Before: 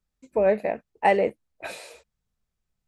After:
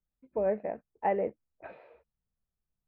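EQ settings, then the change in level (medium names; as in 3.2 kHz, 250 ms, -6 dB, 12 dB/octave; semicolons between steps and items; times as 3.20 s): low-pass 1.7 kHz 12 dB/octave; distance through air 370 m; -7.0 dB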